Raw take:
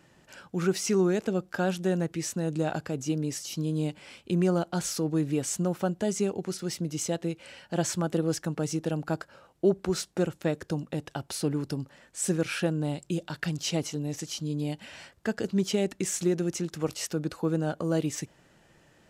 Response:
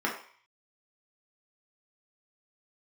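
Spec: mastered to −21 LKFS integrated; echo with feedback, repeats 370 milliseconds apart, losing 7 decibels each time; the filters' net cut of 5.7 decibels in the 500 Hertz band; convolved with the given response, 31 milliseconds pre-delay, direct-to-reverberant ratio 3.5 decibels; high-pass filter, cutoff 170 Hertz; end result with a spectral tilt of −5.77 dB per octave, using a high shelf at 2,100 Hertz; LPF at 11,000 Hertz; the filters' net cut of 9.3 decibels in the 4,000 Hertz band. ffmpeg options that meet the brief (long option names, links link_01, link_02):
-filter_complex "[0:a]highpass=170,lowpass=11000,equalizer=frequency=500:width_type=o:gain=-7.5,highshelf=frequency=2100:gain=-6.5,equalizer=frequency=4000:width_type=o:gain=-6,aecho=1:1:370|740|1110|1480|1850:0.447|0.201|0.0905|0.0407|0.0183,asplit=2[link_01][link_02];[1:a]atrim=start_sample=2205,adelay=31[link_03];[link_02][link_03]afir=irnorm=-1:irlink=0,volume=-13.5dB[link_04];[link_01][link_04]amix=inputs=2:normalize=0,volume=11dB"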